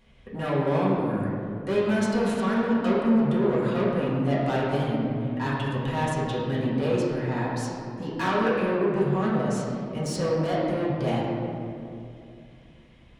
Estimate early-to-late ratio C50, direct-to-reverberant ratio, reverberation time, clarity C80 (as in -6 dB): -1.0 dB, -9.0 dB, 2.6 s, 1.0 dB